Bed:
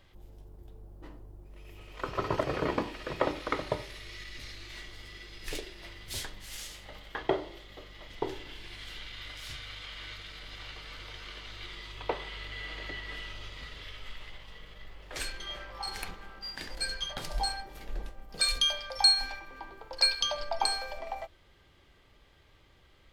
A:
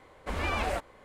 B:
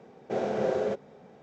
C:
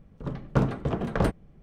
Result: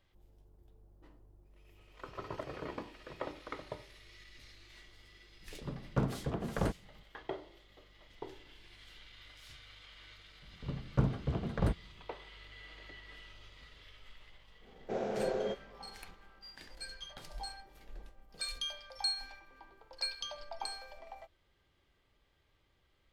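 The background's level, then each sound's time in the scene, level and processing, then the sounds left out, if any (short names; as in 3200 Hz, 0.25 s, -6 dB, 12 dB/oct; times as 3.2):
bed -12 dB
5.41 add C -8.5 dB
10.42 add C -11 dB + bell 71 Hz +9 dB 2.4 oct
14.59 add B -6.5 dB, fades 0.10 s
not used: A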